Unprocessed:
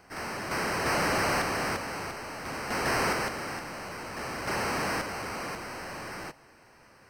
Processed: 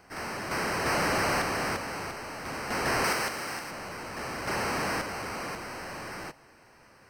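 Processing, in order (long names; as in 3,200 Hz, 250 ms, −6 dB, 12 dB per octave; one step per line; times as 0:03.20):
0:03.04–0:03.71: spectral tilt +1.5 dB per octave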